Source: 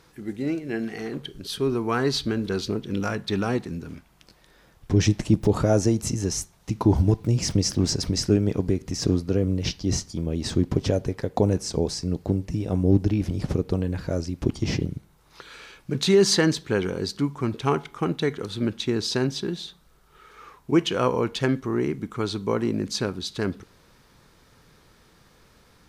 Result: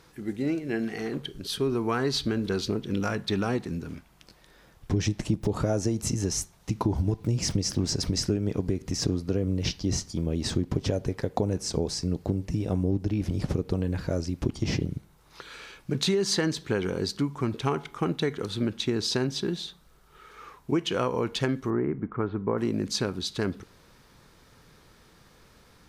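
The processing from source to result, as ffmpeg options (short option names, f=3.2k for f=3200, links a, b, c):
-filter_complex "[0:a]asettb=1/sr,asplit=3[a][b][c];[a]atrim=end=21.704[d];[b]atrim=start=21.7:end=22.58,asetpts=PTS-STARTPTS,afade=t=in:d=0.004:c=qsin,afade=t=out:st=0.876:d=0.004:c=qsin,lowpass=f=1.8k:w=0.5412,lowpass=f=1.8k:w=1.3066[e];[c]atrim=start=22.576[f];[d][e]acrossfade=d=0.004:c1=hsin:c2=qsin[g];[g][f]acrossfade=d=0.004:c1=qsin:c2=hsin,acompressor=threshold=-22dB:ratio=6"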